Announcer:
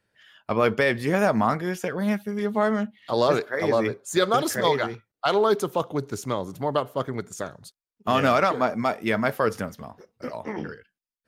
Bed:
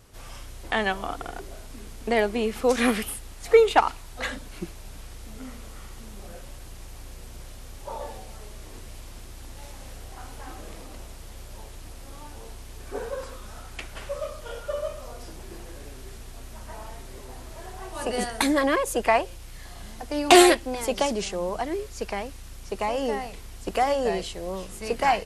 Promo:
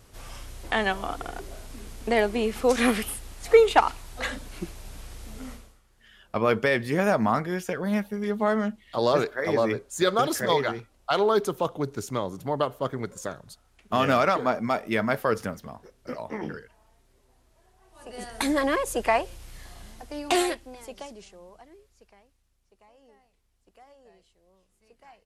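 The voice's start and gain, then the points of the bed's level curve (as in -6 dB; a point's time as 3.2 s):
5.85 s, -1.5 dB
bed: 5.52 s 0 dB
5.83 s -22.5 dB
17.82 s -22.5 dB
18.49 s -2 dB
19.58 s -2 dB
22.58 s -31 dB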